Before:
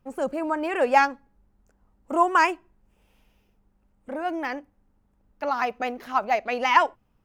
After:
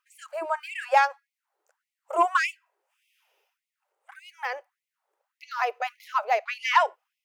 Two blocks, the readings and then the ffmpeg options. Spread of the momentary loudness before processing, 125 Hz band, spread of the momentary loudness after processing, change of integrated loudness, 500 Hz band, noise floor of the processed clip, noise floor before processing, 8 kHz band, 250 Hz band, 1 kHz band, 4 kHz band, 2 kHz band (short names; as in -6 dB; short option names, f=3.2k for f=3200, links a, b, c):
12 LU, n/a, 13 LU, -2.0 dB, -4.5 dB, under -85 dBFS, -67 dBFS, -1.0 dB, -16.5 dB, -2.5 dB, -0.5 dB, -1.5 dB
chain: -af "asoftclip=type=tanh:threshold=-8.5dB,afftfilt=real='re*gte(b*sr/1024,340*pow(2000/340,0.5+0.5*sin(2*PI*1.7*pts/sr)))':imag='im*gte(b*sr/1024,340*pow(2000/340,0.5+0.5*sin(2*PI*1.7*pts/sr)))':win_size=1024:overlap=0.75"